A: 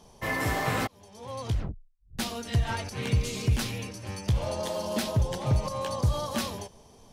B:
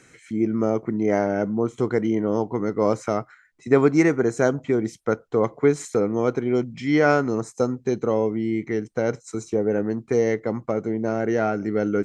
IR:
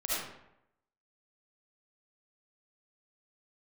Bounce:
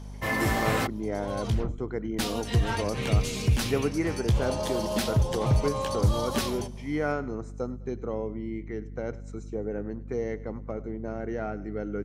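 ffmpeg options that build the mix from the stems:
-filter_complex "[0:a]volume=1.5dB[a];[1:a]lowpass=f=3.8k:p=1,volume=-10.5dB,asplit=2[b][c];[c]volume=-19dB,aecho=0:1:102|204|306|408|510|612:1|0.43|0.185|0.0795|0.0342|0.0147[d];[a][b][d]amix=inputs=3:normalize=0,aeval=exprs='val(0)+0.0112*(sin(2*PI*50*n/s)+sin(2*PI*2*50*n/s)/2+sin(2*PI*3*50*n/s)/3+sin(2*PI*4*50*n/s)/4+sin(2*PI*5*50*n/s)/5)':c=same"

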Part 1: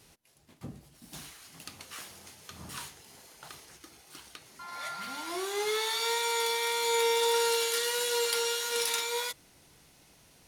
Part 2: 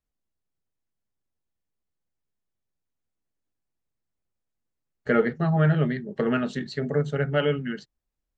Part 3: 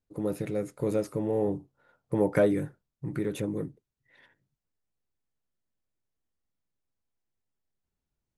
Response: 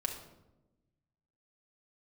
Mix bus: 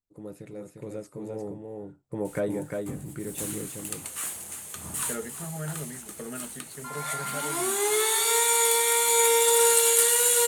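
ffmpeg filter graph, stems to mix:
-filter_complex "[0:a]highshelf=f=6.5k:t=q:w=3:g=7.5,adelay=2250,volume=0dB,asplit=2[a][b];[b]volume=-12.5dB[c];[1:a]volume=-19.5dB[d];[2:a]equalizer=f=7.8k:w=3.6:g=9.5,volume=-10.5dB,asplit=2[e][f];[f]volume=-4.5dB[g];[c][g]amix=inputs=2:normalize=0,aecho=0:1:351:1[h];[a][d][e][h]amix=inputs=4:normalize=0,dynaudnorm=f=200:g=17:m=5dB"

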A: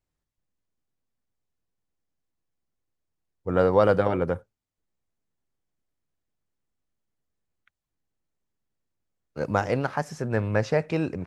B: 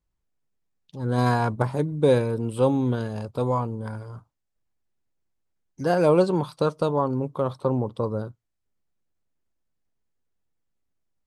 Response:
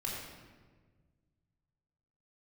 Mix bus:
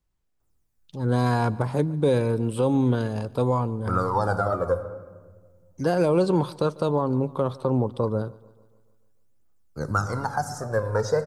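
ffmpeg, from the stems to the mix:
-filter_complex "[0:a]highshelf=f=1.9k:t=q:w=3:g=-13.5,aexciter=amount=8:drive=7.3:freq=3.9k,aphaser=in_gain=1:out_gain=1:delay=2.2:decay=0.74:speed=0.33:type=triangular,adelay=400,volume=-5dB,asplit=2[a][b];[b]volume=-10dB[c];[1:a]alimiter=limit=-14dB:level=0:latency=1:release=90,volume=2.5dB,asplit=2[d][e];[e]volume=-23dB[f];[2:a]atrim=start_sample=2205[g];[c][g]afir=irnorm=-1:irlink=0[h];[f]aecho=0:1:146|292|438|584|730|876|1022|1168:1|0.54|0.292|0.157|0.085|0.0459|0.0248|0.0134[i];[a][d][h][i]amix=inputs=4:normalize=0,acrossover=split=460|3000[j][k][l];[k]acompressor=threshold=-25dB:ratio=2.5[m];[j][m][l]amix=inputs=3:normalize=0"

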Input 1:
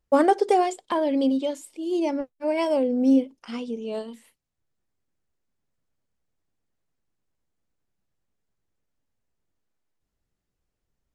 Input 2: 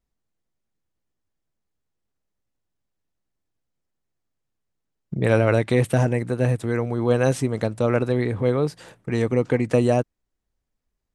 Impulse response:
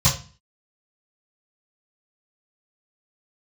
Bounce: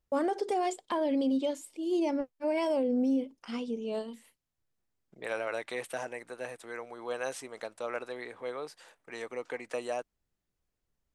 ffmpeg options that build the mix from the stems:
-filter_complex "[0:a]volume=-3.5dB[a];[1:a]highpass=660,volume=-9dB[b];[a][b]amix=inputs=2:normalize=0,alimiter=limit=-22dB:level=0:latency=1:release=50"

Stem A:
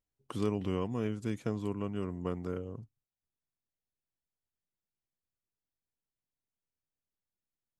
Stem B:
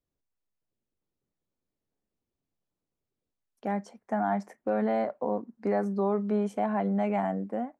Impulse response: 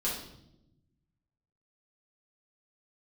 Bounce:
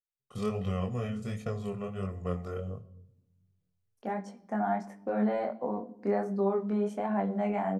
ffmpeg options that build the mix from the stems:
-filter_complex "[0:a]agate=range=-24dB:threshold=-42dB:ratio=16:detection=peak,aecho=1:1:1.6:0.97,volume=1dB,asplit=2[a][b];[b]volume=-16.5dB[c];[1:a]adelay=400,volume=-0.5dB,asplit=2[d][e];[e]volume=-17.5dB[f];[2:a]atrim=start_sample=2205[g];[c][f]amix=inputs=2:normalize=0[h];[h][g]afir=irnorm=-1:irlink=0[i];[a][d][i]amix=inputs=3:normalize=0,flanger=delay=20:depth=4.9:speed=1.4"

